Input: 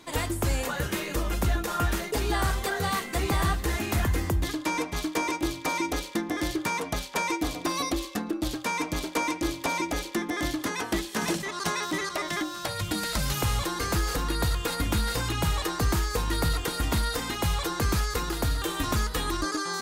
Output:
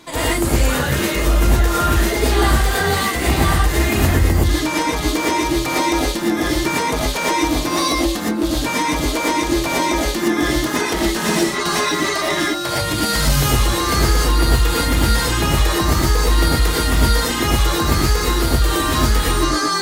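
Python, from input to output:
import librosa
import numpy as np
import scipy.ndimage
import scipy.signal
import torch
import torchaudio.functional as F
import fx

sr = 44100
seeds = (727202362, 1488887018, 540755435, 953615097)

p1 = np.clip(x, -10.0 ** (-26.5 / 20.0), 10.0 ** (-26.5 / 20.0))
p2 = x + (p1 * 10.0 ** (3.0 / 20.0))
p3 = fx.rev_gated(p2, sr, seeds[0], gate_ms=140, shape='rising', drr_db=-5.5)
y = p3 * 10.0 ** (-2.0 / 20.0)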